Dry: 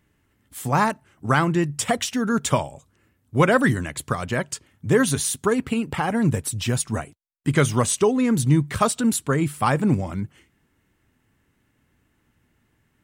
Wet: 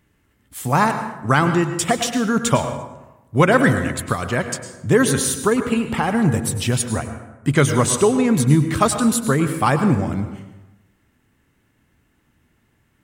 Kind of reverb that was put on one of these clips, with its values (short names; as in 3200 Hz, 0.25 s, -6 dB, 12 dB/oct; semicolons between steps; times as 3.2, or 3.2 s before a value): plate-style reverb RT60 1 s, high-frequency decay 0.55×, pre-delay 90 ms, DRR 8 dB; gain +3 dB